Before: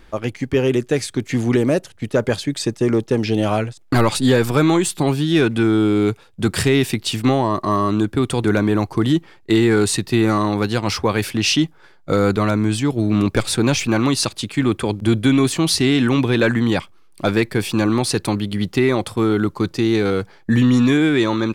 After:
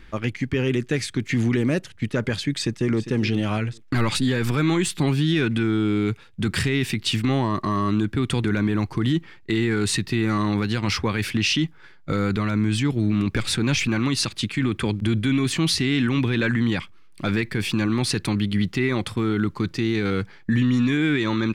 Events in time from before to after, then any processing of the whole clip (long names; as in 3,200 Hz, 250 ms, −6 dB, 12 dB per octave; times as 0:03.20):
0:02.47–0:03.09: delay throw 400 ms, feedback 10%, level −15 dB
whole clip: drawn EQ curve 210 Hz 0 dB, 660 Hz −10 dB, 2,000 Hz +2 dB, 12,000 Hz −9 dB; brickwall limiter −14.5 dBFS; level +1.5 dB